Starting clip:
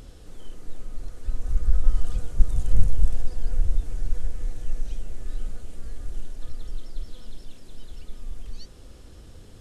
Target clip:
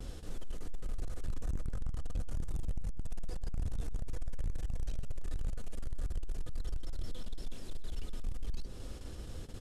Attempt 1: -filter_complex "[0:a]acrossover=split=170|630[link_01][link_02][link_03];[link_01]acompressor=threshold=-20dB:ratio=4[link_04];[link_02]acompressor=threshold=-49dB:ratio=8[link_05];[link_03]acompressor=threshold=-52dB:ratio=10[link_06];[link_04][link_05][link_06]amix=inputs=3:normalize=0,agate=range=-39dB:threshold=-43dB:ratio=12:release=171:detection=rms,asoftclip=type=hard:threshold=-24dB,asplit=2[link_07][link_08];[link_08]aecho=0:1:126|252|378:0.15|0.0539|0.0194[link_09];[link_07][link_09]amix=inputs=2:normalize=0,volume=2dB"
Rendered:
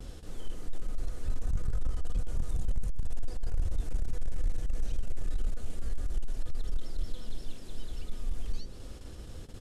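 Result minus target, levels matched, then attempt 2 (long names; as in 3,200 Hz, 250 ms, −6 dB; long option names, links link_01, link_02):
hard clipping: distortion −5 dB
-filter_complex "[0:a]acrossover=split=170|630[link_01][link_02][link_03];[link_01]acompressor=threshold=-20dB:ratio=4[link_04];[link_02]acompressor=threshold=-49dB:ratio=8[link_05];[link_03]acompressor=threshold=-52dB:ratio=10[link_06];[link_04][link_05][link_06]amix=inputs=3:normalize=0,agate=range=-39dB:threshold=-43dB:ratio=12:release=171:detection=rms,asoftclip=type=hard:threshold=-31.5dB,asplit=2[link_07][link_08];[link_08]aecho=0:1:126|252|378:0.15|0.0539|0.0194[link_09];[link_07][link_09]amix=inputs=2:normalize=0,volume=2dB"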